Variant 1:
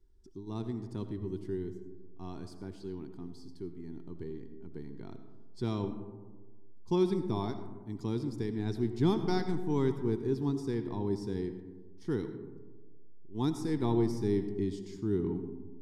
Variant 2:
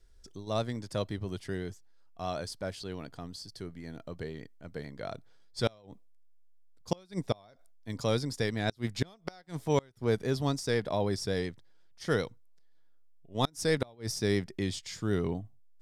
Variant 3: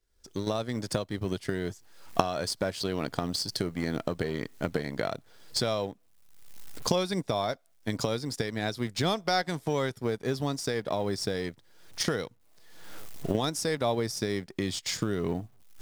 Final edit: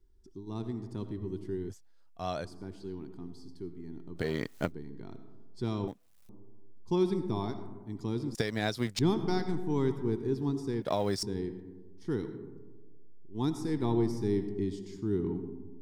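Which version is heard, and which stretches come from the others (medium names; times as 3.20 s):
1
1.70–2.45 s: from 2
4.20–4.69 s: from 3, crossfade 0.10 s
5.88–6.29 s: from 3
8.35–8.99 s: from 3
10.82–11.23 s: from 3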